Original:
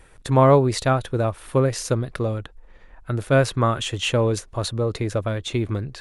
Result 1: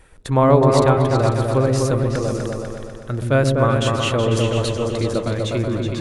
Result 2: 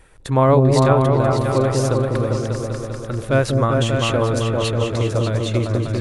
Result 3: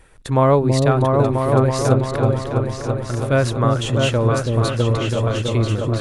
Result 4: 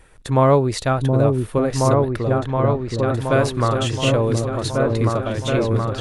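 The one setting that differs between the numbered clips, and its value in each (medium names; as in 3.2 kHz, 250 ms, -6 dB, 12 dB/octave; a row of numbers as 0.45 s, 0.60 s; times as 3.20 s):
delay with an opening low-pass, time: 124 ms, 197 ms, 329 ms, 722 ms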